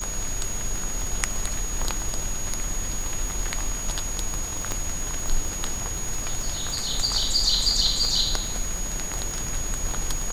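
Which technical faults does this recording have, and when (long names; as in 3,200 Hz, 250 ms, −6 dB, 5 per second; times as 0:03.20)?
surface crackle 50 per second −29 dBFS
whistle 6,700 Hz −31 dBFS
0:04.72: click −12 dBFS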